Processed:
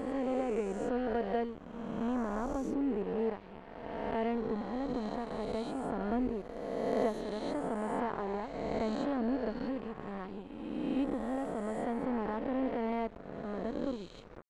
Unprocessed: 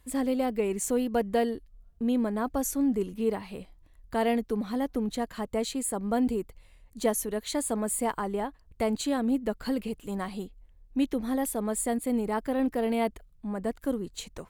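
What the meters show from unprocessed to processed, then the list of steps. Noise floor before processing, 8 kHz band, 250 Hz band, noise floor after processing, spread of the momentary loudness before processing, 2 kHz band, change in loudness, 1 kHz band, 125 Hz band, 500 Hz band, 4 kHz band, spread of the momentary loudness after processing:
-58 dBFS, under -20 dB, -6.0 dB, -50 dBFS, 8 LU, -5.0 dB, -6.0 dB, -4.0 dB, -4.0 dB, -4.5 dB, -10.5 dB, 8 LU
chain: reverse spectral sustain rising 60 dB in 2.55 s; crossover distortion -36 dBFS; tape spacing loss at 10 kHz 31 dB; trim -5.5 dB

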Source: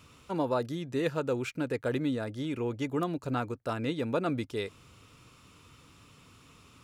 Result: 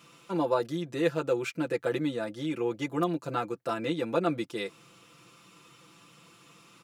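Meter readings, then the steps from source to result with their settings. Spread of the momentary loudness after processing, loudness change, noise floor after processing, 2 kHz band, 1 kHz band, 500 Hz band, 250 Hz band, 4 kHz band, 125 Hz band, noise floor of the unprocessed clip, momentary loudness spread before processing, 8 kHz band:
5 LU, +1.5 dB, -58 dBFS, +2.0 dB, +2.5 dB, +2.5 dB, +1.0 dB, +2.0 dB, -2.0 dB, -58 dBFS, 4 LU, +2.5 dB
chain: high-pass 180 Hz 12 dB/octave; comb 5.9 ms, depth 82%

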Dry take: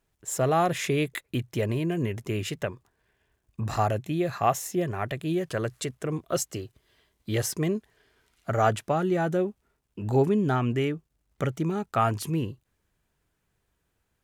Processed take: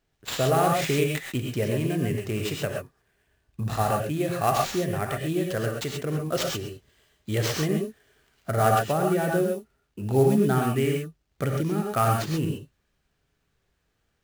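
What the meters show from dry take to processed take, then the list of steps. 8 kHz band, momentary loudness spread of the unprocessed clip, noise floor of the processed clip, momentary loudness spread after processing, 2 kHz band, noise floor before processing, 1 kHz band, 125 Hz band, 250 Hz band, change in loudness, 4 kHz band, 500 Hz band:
+0.5 dB, 10 LU, -74 dBFS, 11 LU, +2.5 dB, -76 dBFS, +2.0 dB, +2.5 dB, +1.5 dB, +2.0 dB, +5.0 dB, +2.5 dB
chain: peaking EQ 960 Hz -5 dB 0.3 oct; sample-rate reducer 11 kHz, jitter 20%; gated-style reverb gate 150 ms rising, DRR 1 dB

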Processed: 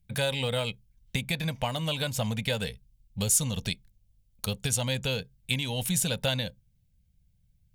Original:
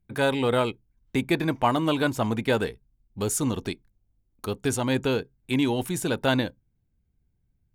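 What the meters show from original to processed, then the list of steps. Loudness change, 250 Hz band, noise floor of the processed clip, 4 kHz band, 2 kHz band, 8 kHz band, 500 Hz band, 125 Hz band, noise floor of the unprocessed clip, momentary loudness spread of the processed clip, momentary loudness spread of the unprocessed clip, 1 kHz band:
-3.0 dB, -9.0 dB, -68 dBFS, +3.0 dB, -3.5 dB, +5.0 dB, -7.5 dB, 0.0 dB, -72 dBFS, 11 LU, 9 LU, -10.0 dB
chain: peaking EQ 620 Hz -5 dB 1.3 oct; compression, threshold -27 dBFS, peak gain reduction 8 dB; FFT filter 190 Hz 0 dB, 340 Hz -21 dB, 530 Hz +2 dB, 1.2 kHz -10 dB, 3 kHz +4 dB; trim +4.5 dB

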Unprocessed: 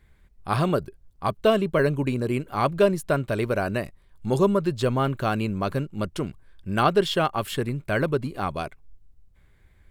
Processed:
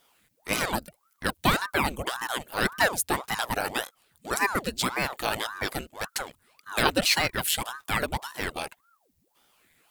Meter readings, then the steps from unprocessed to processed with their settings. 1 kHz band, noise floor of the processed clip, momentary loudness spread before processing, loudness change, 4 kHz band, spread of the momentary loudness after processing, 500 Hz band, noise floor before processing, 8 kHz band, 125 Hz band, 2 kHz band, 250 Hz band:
-2.0 dB, -71 dBFS, 10 LU, -2.5 dB, +5.5 dB, 10 LU, -9.5 dB, -58 dBFS, +11.5 dB, -11.0 dB, +4.5 dB, -8.0 dB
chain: tilt EQ +4 dB/octave; band-stop 1.3 kHz, Q 5.1; ring modulator with a swept carrier 740 Hz, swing 90%, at 1.8 Hz; trim +2 dB

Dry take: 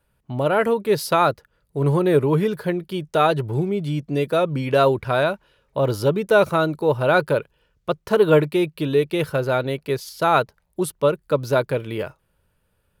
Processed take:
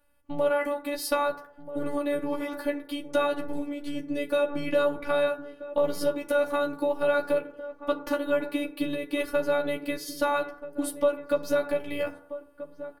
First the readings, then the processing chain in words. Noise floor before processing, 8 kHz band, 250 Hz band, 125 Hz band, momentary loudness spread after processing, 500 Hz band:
-69 dBFS, no reading, -7.0 dB, -23.5 dB, 9 LU, -7.0 dB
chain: compression 4:1, threshold -23 dBFS, peak gain reduction 11 dB; robot voice 289 Hz; doubling 12 ms -4 dB; echo from a far wall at 220 m, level -13 dB; FDN reverb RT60 0.72 s, low-frequency decay 0.75×, high-frequency decay 0.35×, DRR 5 dB

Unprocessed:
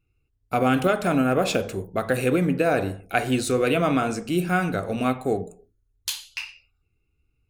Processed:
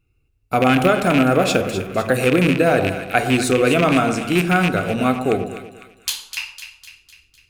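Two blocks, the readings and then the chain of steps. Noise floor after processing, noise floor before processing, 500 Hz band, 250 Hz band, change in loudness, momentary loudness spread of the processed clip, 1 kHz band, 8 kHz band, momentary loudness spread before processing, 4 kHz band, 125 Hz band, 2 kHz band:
-63 dBFS, -72 dBFS, +5.5 dB, +5.5 dB, +6.0 dB, 13 LU, +5.5 dB, +5.5 dB, 10 LU, +7.0 dB, +6.0 dB, +7.5 dB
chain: rattle on loud lows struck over -24 dBFS, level -15 dBFS; two-band feedback delay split 1.3 kHz, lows 115 ms, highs 252 ms, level -10 dB; trim +5 dB

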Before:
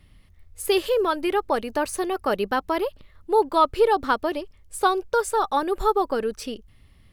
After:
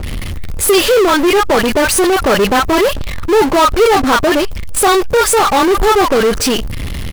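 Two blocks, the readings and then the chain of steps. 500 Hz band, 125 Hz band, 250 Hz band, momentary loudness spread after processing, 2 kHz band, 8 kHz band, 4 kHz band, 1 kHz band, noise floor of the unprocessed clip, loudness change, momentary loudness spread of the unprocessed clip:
+11.5 dB, no reading, +14.5 dB, 9 LU, +15.0 dB, +19.5 dB, +16.5 dB, +10.0 dB, -55 dBFS, +12.0 dB, 11 LU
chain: bands offset in time lows, highs 30 ms, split 960 Hz; power-law waveshaper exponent 0.35; trim +5.5 dB

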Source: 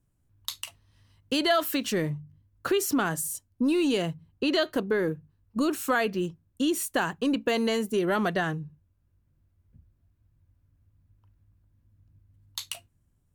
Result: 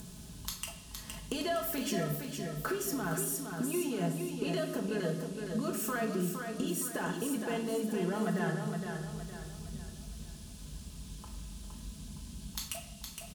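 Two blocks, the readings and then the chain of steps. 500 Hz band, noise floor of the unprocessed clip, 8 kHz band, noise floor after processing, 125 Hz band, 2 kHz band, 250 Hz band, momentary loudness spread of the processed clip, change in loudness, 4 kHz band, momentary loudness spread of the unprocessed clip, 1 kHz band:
-7.0 dB, -71 dBFS, -2.0 dB, -48 dBFS, -0.5 dB, -8.5 dB, -6.5 dB, 14 LU, -7.5 dB, -9.5 dB, 14 LU, -8.0 dB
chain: high-pass 54 Hz; peaking EQ 3.1 kHz -5 dB 1.8 oct; band-stop 3.9 kHz, Q 7.9; comb 4.7 ms, depth 94%; upward compressor, threshold -30 dBFS; peak limiter -19.5 dBFS, peak gain reduction 8.5 dB; compression, threshold -33 dBFS, peak gain reduction 10.5 dB; band noise 2.7–11 kHz -58 dBFS; on a send: feedback delay 464 ms, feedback 42%, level -6 dB; on the sum: simulated room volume 400 m³, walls mixed, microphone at 0.76 m

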